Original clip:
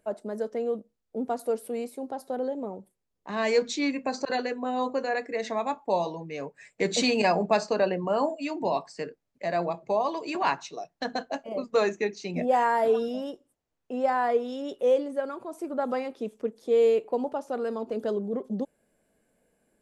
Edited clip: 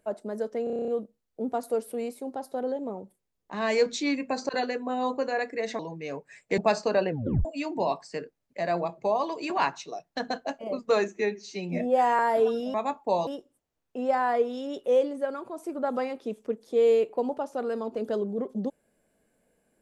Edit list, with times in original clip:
0.64 stutter 0.03 s, 9 plays
5.55–6.08 move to 13.22
6.87–7.43 cut
7.94 tape stop 0.36 s
11.93–12.67 stretch 1.5×

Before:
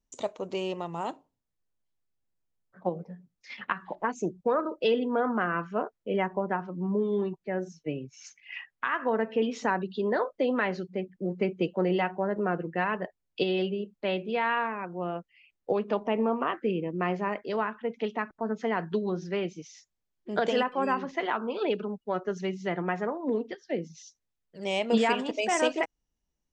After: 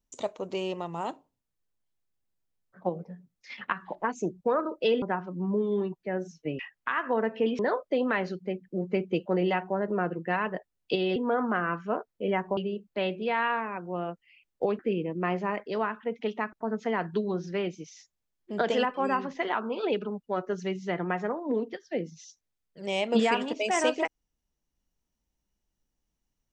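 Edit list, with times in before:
5.02–6.43 move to 13.64
8–8.55 cut
9.55–10.07 cut
15.86–16.57 cut

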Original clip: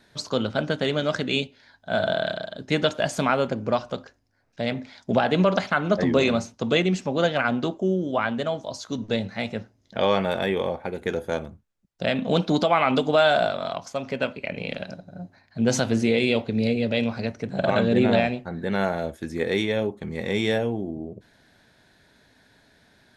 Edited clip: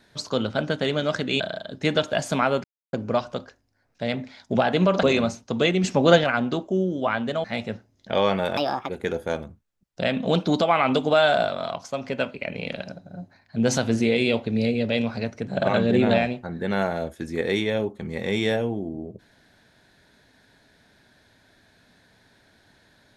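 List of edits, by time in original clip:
1.4–2.27 cut
3.51 insert silence 0.29 s
5.61–6.14 cut
6.95–7.35 gain +6.5 dB
8.55–9.3 cut
10.43–10.91 speed 150%

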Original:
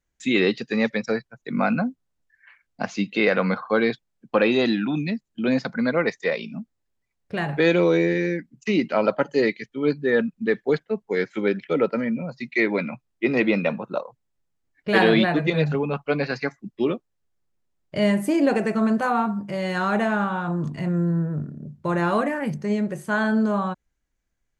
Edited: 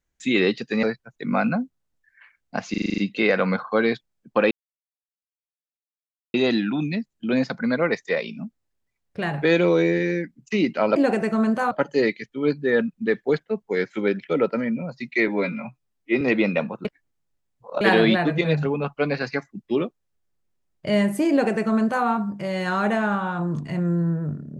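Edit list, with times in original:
0.83–1.09 cut
2.96 stutter 0.04 s, 8 plays
4.49 insert silence 1.83 s
12.68–13.3 stretch 1.5×
13.94–14.9 reverse
18.39–19.14 copy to 9.11

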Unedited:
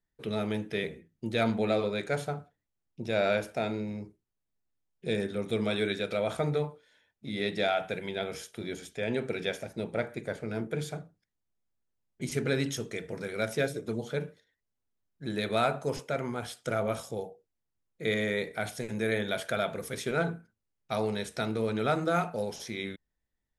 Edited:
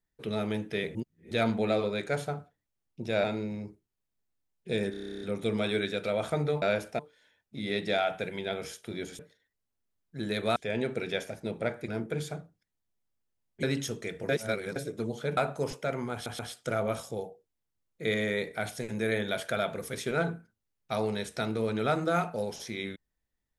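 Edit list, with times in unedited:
0.95–1.31 reverse
3.24–3.61 move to 6.69
5.28 stutter 0.03 s, 11 plays
10.21–10.49 cut
12.24–12.52 cut
13.18–13.65 reverse
14.26–15.63 move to 8.89
16.39 stutter 0.13 s, 3 plays

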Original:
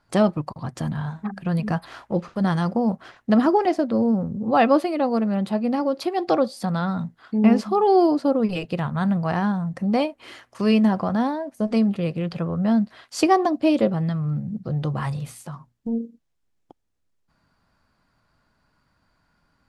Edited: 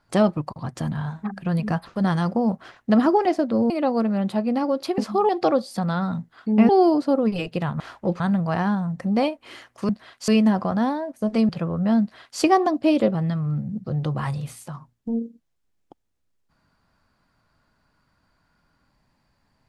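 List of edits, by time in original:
1.87–2.27 move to 8.97
4.1–4.87 cut
7.55–7.86 move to 6.15
11.87–12.28 cut
12.8–13.19 copy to 10.66

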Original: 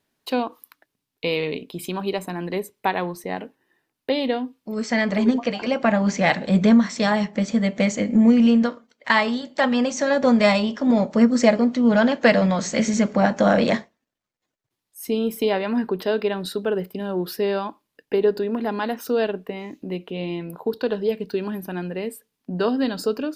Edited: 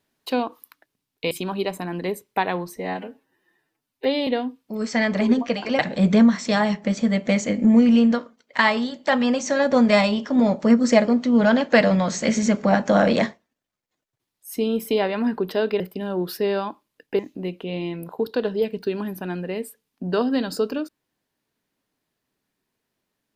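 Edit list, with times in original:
1.31–1.79 cut
3.22–4.24 stretch 1.5×
5.76–6.3 cut
16.31–16.79 cut
18.18–19.66 cut

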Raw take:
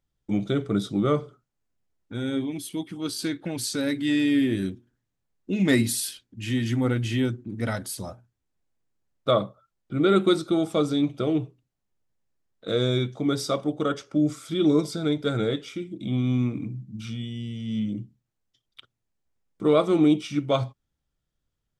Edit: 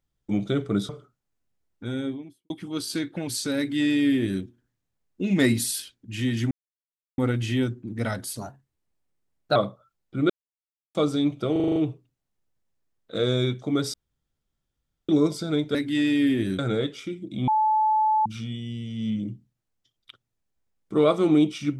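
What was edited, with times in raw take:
0.89–1.18 cut
2.14–2.79 studio fade out
3.87–4.71 copy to 15.28
6.8 insert silence 0.67 s
8–9.33 speed 113%
10.07–10.72 mute
11.29 stutter 0.04 s, 7 plays
13.47–14.62 room tone
16.17–16.95 bleep 866 Hz -18 dBFS

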